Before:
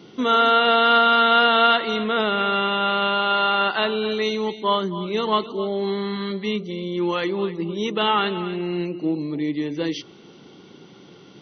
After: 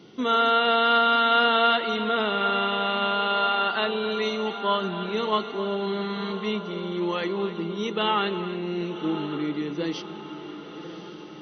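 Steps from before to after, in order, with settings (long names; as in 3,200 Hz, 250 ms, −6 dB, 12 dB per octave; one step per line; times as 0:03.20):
feedback delay with all-pass diffusion 1,088 ms, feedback 59%, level −12 dB
level −4 dB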